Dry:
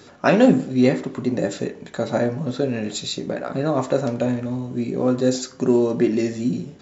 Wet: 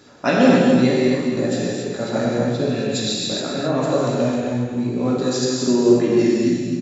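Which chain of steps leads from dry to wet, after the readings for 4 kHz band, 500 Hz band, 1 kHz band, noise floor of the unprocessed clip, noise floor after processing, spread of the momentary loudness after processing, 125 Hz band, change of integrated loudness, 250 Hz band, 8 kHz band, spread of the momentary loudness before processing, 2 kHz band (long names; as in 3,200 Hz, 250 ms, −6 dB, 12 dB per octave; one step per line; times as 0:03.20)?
+6.5 dB, +2.5 dB, +2.0 dB, −45 dBFS, −27 dBFS, 8 LU, +2.5 dB, +2.5 dB, +2.5 dB, can't be measured, 10 LU, +3.0 dB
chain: dynamic equaliser 4,500 Hz, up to +5 dB, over −42 dBFS, Q 0.76
on a send: single-tap delay 261 ms −7.5 dB
on the sum: reverb whose tail is shaped and stops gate 310 ms flat, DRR −4 dB
level −4 dB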